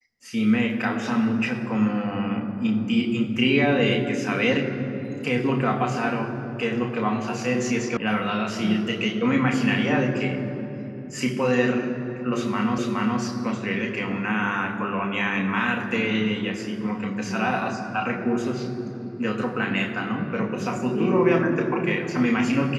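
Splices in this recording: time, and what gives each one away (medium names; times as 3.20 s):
7.97 s: sound stops dead
12.78 s: repeat of the last 0.42 s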